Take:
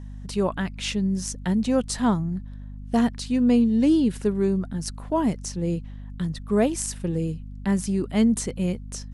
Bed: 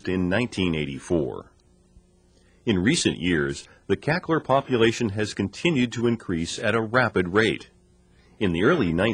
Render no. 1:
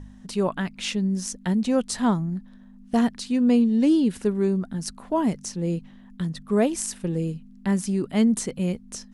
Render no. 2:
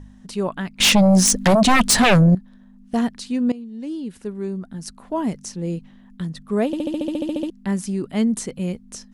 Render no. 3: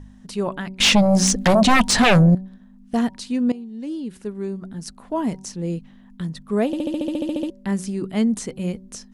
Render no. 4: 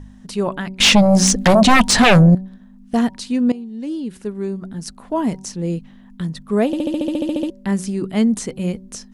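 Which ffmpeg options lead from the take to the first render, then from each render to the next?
ffmpeg -i in.wav -af "bandreject=frequency=50:width_type=h:width=4,bandreject=frequency=100:width_type=h:width=4,bandreject=frequency=150:width_type=h:width=4" out.wav
ffmpeg -i in.wav -filter_complex "[0:a]asettb=1/sr,asplit=3[link_01][link_02][link_03];[link_01]atrim=end=0.804[link_04];[link_02]atrim=start=0.8:end=2.35,asetpts=PTS-STARTPTS,afade=type=in:duration=0.004:curve=qsin,afade=type=out:start_time=1.546:duration=0.004:curve=qsin,aeval=exprs='0.316*sin(PI/2*5.01*val(0)/0.316)':channel_layout=same[link_05];[link_03]atrim=start=2.346[link_06];[link_04][link_05]acrossfade=duration=0.004:curve1=hsin:curve2=qsin[link_07];[link_07][link_06]acrossfade=duration=0.004:curve1=qsin:curve2=hsin,asplit=14[link_08][link_09][link_10][link_11][link_12][link_13][link_14][link_15][link_16][link_17][link_18][link_19][link_20][link_21];[link_08]atrim=end=3.52,asetpts=PTS-STARTPTS,afade=type=out:start_time=3.516:duration=0.004:curve=hsin:silence=0.112202[link_22];[link_09]atrim=start=3.52:end=6.732,asetpts=PTS-STARTPTS,afade=type=in:duration=1.84:silence=0.112202[link_23];[link_10]atrim=start=6.658:end=6.732[link_24];[link_11]atrim=start=6.658:end=6.732[link_25];[link_12]atrim=start=6.658:end=6.732[link_26];[link_13]atrim=start=6.658:end=6.732[link_27];[link_14]atrim=start=6.658:end=6.732[link_28];[link_15]atrim=start=6.658:end=6.732[link_29];[link_16]atrim=start=6.658:end=6.732[link_30];[link_17]atrim=start=6.658:end=6.732[link_31];[link_18]atrim=start=6.658:end=6.732[link_32];[link_19]atrim=start=6.658:end=6.732[link_33];[link_20]atrim=start=6.658:end=6.732[link_34];[link_21]atrim=start=7.498[link_35];[link_22][link_23]concat=n=2:v=0:a=1[link_36];[link_36][link_24]acrossfade=duration=0.004:curve1=hsin:curve2=hsin[link_37];[link_37][link_25]acrossfade=duration=0.004:curve1=hsin:curve2=hsin[link_38];[link_38][link_26]acrossfade=duration=0.004:curve1=hsin:curve2=hsin[link_39];[link_39][link_27]acrossfade=duration=0.004:curve1=hsin:curve2=hsin[link_40];[link_40][link_28]acrossfade=duration=0.004:curve1=hsin:curve2=hsin[link_41];[link_41][link_29]acrossfade=duration=0.004:curve1=hsin:curve2=hsin[link_42];[link_42][link_30]acrossfade=duration=0.004:curve1=hsin:curve2=hsin[link_43];[link_43][link_31]acrossfade=duration=0.004:curve1=hsin:curve2=hsin[link_44];[link_44][link_32]acrossfade=duration=0.004:curve1=hsin:curve2=hsin[link_45];[link_45][link_33]acrossfade=duration=0.004:curve1=hsin:curve2=hsin[link_46];[link_46][link_34]acrossfade=duration=0.004:curve1=hsin:curve2=hsin[link_47];[link_47][link_35]acrossfade=duration=0.004:curve1=hsin:curve2=hsin" out.wav
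ffmpeg -i in.wav -filter_complex "[0:a]bandreject=frequency=189.5:width_type=h:width=4,bandreject=frequency=379:width_type=h:width=4,bandreject=frequency=568.5:width_type=h:width=4,bandreject=frequency=758:width_type=h:width=4,bandreject=frequency=947.5:width_type=h:width=4,acrossover=split=7700[link_01][link_02];[link_02]acompressor=threshold=-36dB:ratio=4:attack=1:release=60[link_03];[link_01][link_03]amix=inputs=2:normalize=0" out.wav
ffmpeg -i in.wav -af "volume=3.5dB" out.wav

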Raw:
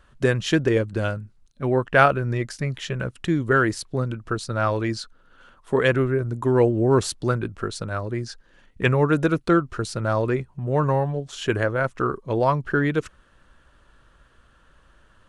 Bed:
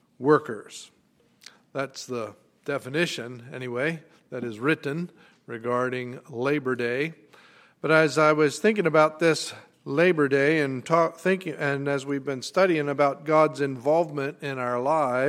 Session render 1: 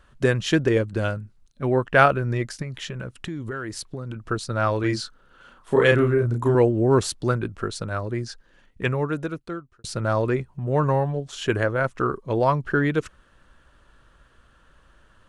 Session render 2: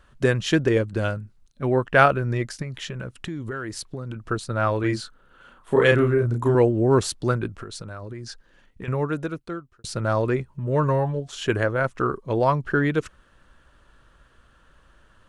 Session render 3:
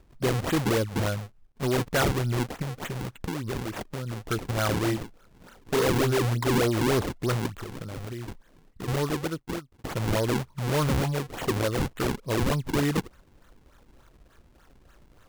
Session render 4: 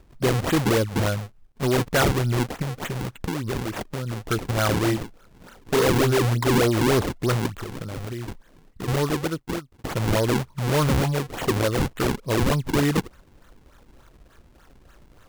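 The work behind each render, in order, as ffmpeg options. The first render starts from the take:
ffmpeg -i in.wav -filter_complex "[0:a]asettb=1/sr,asplit=3[link_01][link_02][link_03];[link_01]atrim=end=2.624[link_04];[link_02]atrim=start=2.62:end=4.16,asetpts=PTS-STARTPTS,afade=type=in:duration=0.004:curve=qsin,afade=type=out:start_time=1.536:duration=0.004:curve=qsin,acompressor=threshold=-28dB:ratio=6:attack=3.2:release=140:knee=1:detection=peak[link_05];[link_03]atrim=start=4.156[link_06];[link_04][link_05]acrossfade=duration=0.004:curve1=hsin:curve2=qsin[link_07];[link_07][link_06]acrossfade=duration=0.004:curve1=qsin:curve2=hsin,asettb=1/sr,asplit=3[link_08][link_09][link_10];[link_08]atrim=end=4.804[link_11];[link_09]atrim=start=4.8:end=6.55,asetpts=PTS-STARTPTS,afade=type=in:duration=0.004:curve=qsin,afade=type=out:start_time=1.746:duration=0.004:curve=qsin,asplit=2[link_12][link_13];[link_13]adelay=33,volume=-2.5dB[link_14];[link_12][link_14]amix=inputs=2:normalize=0,atrim=end_sample=77175[link_15];[link_10]atrim=start=6.546[link_16];[link_11][link_15]acrossfade=duration=0.004:curve1=hsin:curve2=qsin[link_17];[link_17][link_16]acrossfade=duration=0.004:curve1=qsin:curve2=hsin,asplit=2[link_18][link_19];[link_18]atrim=end=9.84,asetpts=PTS-STARTPTS,afade=type=out:start_time=8.28:duration=1.56[link_20];[link_19]atrim=start=9.84,asetpts=PTS-STARTPTS,afade=type=in:duration=0.004:curve=hsin[link_21];[link_20][link_21]concat=n=2:v=0:a=1" out.wav
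ffmpeg -i in.wav -filter_complex "[0:a]asettb=1/sr,asplit=3[link_01][link_02][link_03];[link_01]atrim=end=4.404[link_04];[link_02]atrim=start=4.4:end=5.82,asetpts=PTS-STARTPTS,afade=type=in:duration=0.004:curve=qsin,afade=type=out:start_time=1.416:duration=0.004:curve=qsin,equalizer=frequency=5300:width_type=o:width=0.77:gain=-6[link_05];[link_03]atrim=start=5.816[link_06];[link_04][link_05]acrossfade=duration=0.004:curve1=hsin:curve2=qsin[link_07];[link_07][link_06]acrossfade=duration=0.004:curve1=qsin:curve2=hsin,asettb=1/sr,asplit=3[link_08][link_09][link_10];[link_08]atrim=end=7.504[link_11];[link_09]atrim=start=7.5:end=8.88,asetpts=PTS-STARTPTS,afade=type=in:duration=0.004:curve=qsin,afade=type=out:start_time=1.376:duration=0.004:curve=qsin,acompressor=threshold=-31dB:ratio=12:attack=3.2:release=140:knee=1:detection=peak[link_12];[link_10]atrim=start=8.876[link_13];[link_11][link_12]acrossfade=duration=0.004:curve1=hsin:curve2=qsin[link_14];[link_14][link_13]acrossfade=duration=0.004:curve1=qsin:curve2=hsin,asettb=1/sr,asplit=3[link_15][link_16][link_17];[link_15]atrim=end=10.494[link_18];[link_16]atrim=start=10.49:end=11.29,asetpts=PTS-STARTPTS,afade=type=in:duration=0.004:curve=qsin,afade=type=out:start_time=0.796:duration=0.004:curve=qsin,asuperstop=centerf=760:order=20:qfactor=7[link_19];[link_17]atrim=start=11.286[link_20];[link_18][link_19]acrossfade=duration=0.004:curve1=hsin:curve2=qsin[link_21];[link_21][link_20]acrossfade=duration=0.004:curve1=qsin:curve2=hsin" out.wav
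ffmpeg -i in.wav -af "acrusher=samples=41:mix=1:aa=0.000001:lfo=1:lforange=65.6:lforate=3.4,asoftclip=type=tanh:threshold=-19.5dB" out.wav
ffmpeg -i in.wav -af "volume=4dB" out.wav

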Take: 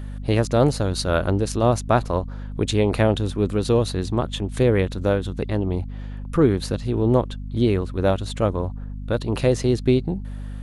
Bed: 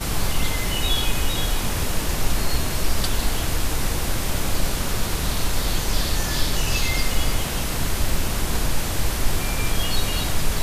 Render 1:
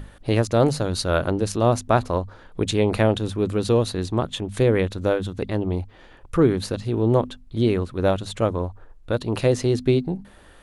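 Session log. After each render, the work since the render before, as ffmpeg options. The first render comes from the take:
ffmpeg -i in.wav -af "bandreject=frequency=50:width_type=h:width=6,bandreject=frequency=100:width_type=h:width=6,bandreject=frequency=150:width_type=h:width=6,bandreject=frequency=200:width_type=h:width=6,bandreject=frequency=250:width_type=h:width=6" out.wav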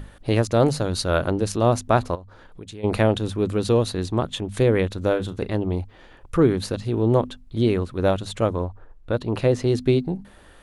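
ffmpeg -i in.wav -filter_complex "[0:a]asplit=3[link_01][link_02][link_03];[link_01]afade=type=out:start_time=2.14:duration=0.02[link_04];[link_02]acompressor=threshold=-43dB:ratio=2.5:attack=3.2:release=140:knee=1:detection=peak,afade=type=in:start_time=2.14:duration=0.02,afade=type=out:start_time=2.83:duration=0.02[link_05];[link_03]afade=type=in:start_time=2.83:duration=0.02[link_06];[link_04][link_05][link_06]amix=inputs=3:normalize=0,asettb=1/sr,asplit=3[link_07][link_08][link_09];[link_07]atrim=end=5.084[link_10];[link_08]atrim=start=5.08:end=5.56,asetpts=PTS-STARTPTS,afade=type=in:duration=0.004:curve=qsin,afade=type=out:start_time=0.476:duration=0.004:curve=qsin,asplit=2[link_11][link_12];[link_12]adelay=37,volume=-13dB[link_13];[link_11][link_13]amix=inputs=2:normalize=0,atrim=end_sample=21168[link_14];[link_09]atrim=start=5.556[link_15];[link_10][link_14]acrossfade=duration=0.004:curve1=hsin:curve2=qsin[link_16];[link_16][link_15]acrossfade=duration=0.004:curve1=qsin:curve2=hsin,asettb=1/sr,asplit=3[link_17][link_18][link_19];[link_17]atrim=end=8.644[link_20];[link_18]atrim=start=8.64:end=9.67,asetpts=PTS-STARTPTS,afade=type=in:duration=0.004:curve=qsin,afade=type=out:start_time=1.026:duration=0.004:curve=qsin,highshelf=frequency=4200:gain=-9[link_21];[link_19]atrim=start=9.666[link_22];[link_20][link_21]acrossfade=duration=0.004:curve1=hsin:curve2=qsin[link_23];[link_23][link_22]acrossfade=duration=0.004:curve1=qsin:curve2=hsin" out.wav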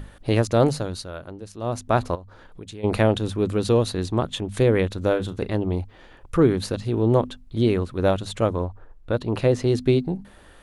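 ffmpeg -i in.wav -filter_complex "[0:a]asplit=3[link_01][link_02][link_03];[link_01]atrim=end=1.12,asetpts=PTS-STARTPTS,afade=type=out:start_time=0.63:duration=0.49:silence=0.177828[link_04];[link_02]atrim=start=1.12:end=1.56,asetpts=PTS-STARTPTS,volume=-15dB[link_05];[link_03]atrim=start=1.56,asetpts=PTS-STARTPTS,afade=type=in:duration=0.49:silence=0.177828[link_06];[link_04][link_05][link_06]concat=n=3:v=0:a=1" out.wav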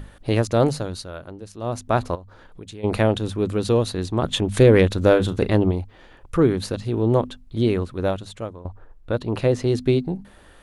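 ffmpeg -i in.wav -filter_complex "[0:a]asplit=3[link_01][link_02][link_03];[link_01]afade=type=out:start_time=4.22:duration=0.02[link_04];[link_02]acontrast=66,afade=type=in:start_time=4.22:duration=0.02,afade=type=out:start_time=5.7:duration=0.02[link_05];[link_03]afade=type=in:start_time=5.7:duration=0.02[link_06];[link_04][link_05][link_06]amix=inputs=3:normalize=0,asplit=2[link_07][link_08];[link_07]atrim=end=8.65,asetpts=PTS-STARTPTS,afade=type=out:start_time=7.83:duration=0.82:silence=0.112202[link_09];[link_08]atrim=start=8.65,asetpts=PTS-STARTPTS,afade=type=in:duration=0.004:curve=hsin:silence=0.112202[link_10];[link_09][link_10]concat=n=2:v=0:a=1" out.wav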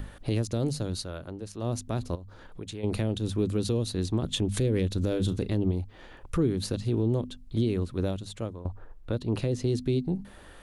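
ffmpeg -i in.wav -filter_complex "[0:a]acrossover=split=400|3000[link_01][link_02][link_03];[link_02]acompressor=threshold=-44dB:ratio=2[link_04];[link_01][link_04][link_03]amix=inputs=3:normalize=0,alimiter=limit=-17dB:level=0:latency=1:release=311" out.wav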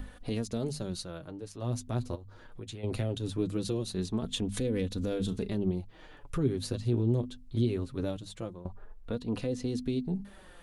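ffmpeg -i in.wav -af "flanger=delay=4:depth=4.4:regen=27:speed=0.21:shape=sinusoidal" out.wav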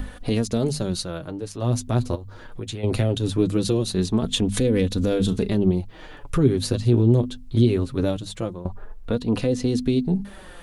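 ffmpeg -i in.wav -af "volume=10.5dB" out.wav

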